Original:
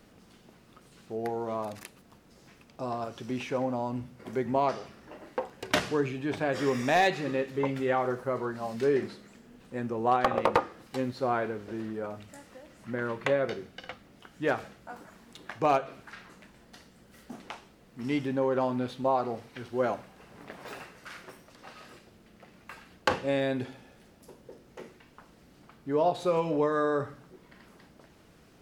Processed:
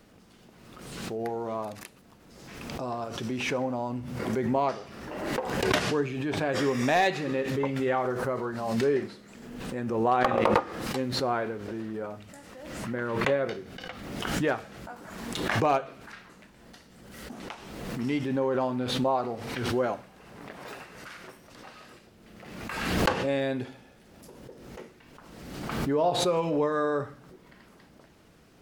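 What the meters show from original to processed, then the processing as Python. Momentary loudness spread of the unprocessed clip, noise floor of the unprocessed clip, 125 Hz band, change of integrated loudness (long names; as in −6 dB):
21 LU, −58 dBFS, +4.5 dB, +1.5 dB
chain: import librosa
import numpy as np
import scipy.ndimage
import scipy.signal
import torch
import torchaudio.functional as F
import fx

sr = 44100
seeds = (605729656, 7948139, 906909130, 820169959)

y = fx.pre_swell(x, sr, db_per_s=38.0)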